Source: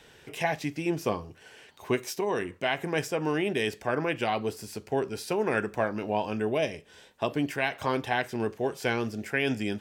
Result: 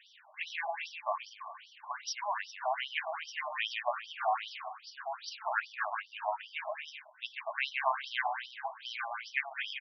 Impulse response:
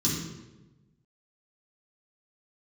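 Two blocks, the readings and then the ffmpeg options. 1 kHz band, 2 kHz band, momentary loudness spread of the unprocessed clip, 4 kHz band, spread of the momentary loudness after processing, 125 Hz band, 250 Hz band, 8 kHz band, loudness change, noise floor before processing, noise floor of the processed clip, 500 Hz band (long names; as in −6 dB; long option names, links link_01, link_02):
−1.5 dB, −3.5 dB, 4 LU, −2.0 dB, 10 LU, below −40 dB, below −40 dB, −8.0 dB, −7.0 dB, −56 dBFS, −60 dBFS, −13.0 dB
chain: -filter_complex "[0:a]aecho=1:1:140|245|323.8|382.8|427.1:0.631|0.398|0.251|0.158|0.1,asplit=2[link_01][link_02];[1:a]atrim=start_sample=2205[link_03];[link_02][link_03]afir=irnorm=-1:irlink=0,volume=-21dB[link_04];[link_01][link_04]amix=inputs=2:normalize=0,afftfilt=real='re*between(b*sr/1024,830*pow(4300/830,0.5+0.5*sin(2*PI*2.5*pts/sr))/1.41,830*pow(4300/830,0.5+0.5*sin(2*PI*2.5*pts/sr))*1.41)':imag='im*between(b*sr/1024,830*pow(4300/830,0.5+0.5*sin(2*PI*2.5*pts/sr))/1.41,830*pow(4300/830,0.5+0.5*sin(2*PI*2.5*pts/sr))*1.41)':win_size=1024:overlap=0.75"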